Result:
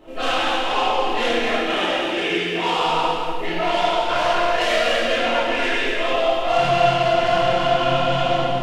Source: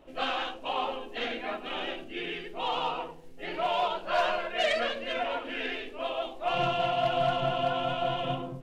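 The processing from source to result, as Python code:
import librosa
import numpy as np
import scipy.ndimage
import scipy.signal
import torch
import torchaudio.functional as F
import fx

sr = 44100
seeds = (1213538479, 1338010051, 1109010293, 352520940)

p1 = fx.highpass(x, sr, hz=110.0, slope=12, at=(1.58, 2.86))
p2 = fx.rider(p1, sr, range_db=4, speed_s=0.5)
p3 = p1 + F.gain(torch.from_numpy(p2), -1.0).numpy()
p4 = fx.chorus_voices(p3, sr, voices=2, hz=0.34, base_ms=28, depth_ms=4.4, mix_pct=45)
p5 = 10.0 ** (-25.5 / 20.0) * np.tanh(p4 / 10.0 ** (-25.5 / 20.0))
p6 = p5 + fx.echo_single(p5, sr, ms=242, db=-6.0, dry=0)
p7 = fx.rev_gated(p6, sr, seeds[0], gate_ms=440, shape='falling', drr_db=-5.0)
y = F.gain(torch.from_numpy(p7), 4.5).numpy()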